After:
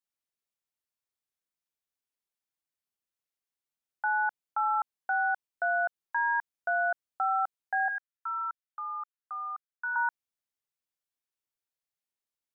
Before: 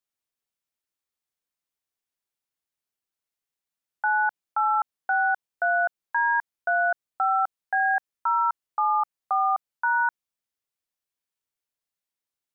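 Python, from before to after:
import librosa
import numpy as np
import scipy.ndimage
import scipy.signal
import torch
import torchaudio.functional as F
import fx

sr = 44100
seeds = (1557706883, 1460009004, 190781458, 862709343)

y = fx.ladder_highpass(x, sr, hz=1200.0, resonance_pct=50, at=(7.88, 9.96))
y = F.gain(torch.from_numpy(y), -5.0).numpy()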